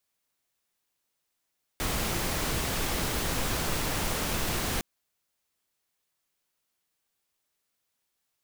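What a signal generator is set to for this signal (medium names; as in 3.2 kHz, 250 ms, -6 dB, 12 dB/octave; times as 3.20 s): noise pink, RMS -29.5 dBFS 3.01 s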